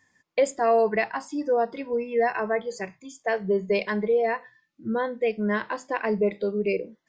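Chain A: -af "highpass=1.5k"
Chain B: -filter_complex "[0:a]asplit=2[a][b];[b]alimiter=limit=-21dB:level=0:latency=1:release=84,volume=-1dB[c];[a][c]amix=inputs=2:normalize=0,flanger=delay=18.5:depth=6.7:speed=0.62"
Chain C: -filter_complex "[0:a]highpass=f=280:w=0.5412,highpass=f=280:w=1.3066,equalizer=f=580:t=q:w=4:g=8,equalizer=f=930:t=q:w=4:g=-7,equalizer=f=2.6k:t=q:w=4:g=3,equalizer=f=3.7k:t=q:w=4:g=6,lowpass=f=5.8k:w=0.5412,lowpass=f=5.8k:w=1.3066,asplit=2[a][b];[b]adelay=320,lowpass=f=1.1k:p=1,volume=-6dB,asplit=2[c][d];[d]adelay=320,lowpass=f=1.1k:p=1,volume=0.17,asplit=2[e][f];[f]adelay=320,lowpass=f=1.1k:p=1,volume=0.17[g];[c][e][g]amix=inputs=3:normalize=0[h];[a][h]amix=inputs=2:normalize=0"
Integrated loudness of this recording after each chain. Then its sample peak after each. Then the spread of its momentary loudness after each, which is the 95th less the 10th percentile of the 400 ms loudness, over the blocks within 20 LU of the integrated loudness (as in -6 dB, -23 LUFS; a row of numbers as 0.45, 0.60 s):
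-36.5, -25.5, -24.0 LUFS; -17.0, -10.0, -7.0 dBFS; 10, 8, 9 LU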